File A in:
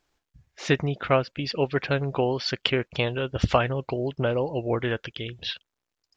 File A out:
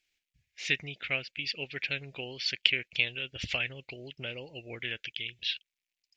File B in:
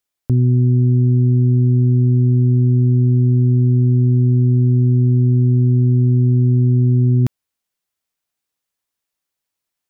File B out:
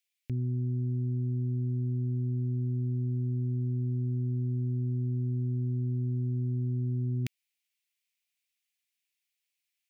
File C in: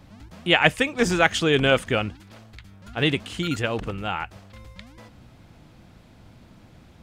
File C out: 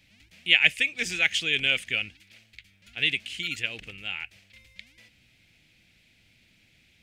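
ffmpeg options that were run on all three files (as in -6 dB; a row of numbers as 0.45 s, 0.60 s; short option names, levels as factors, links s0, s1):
-af "highshelf=f=1600:t=q:w=3:g=13,volume=0.141"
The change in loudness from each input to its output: -6.0 LU, -17.0 LU, -2.5 LU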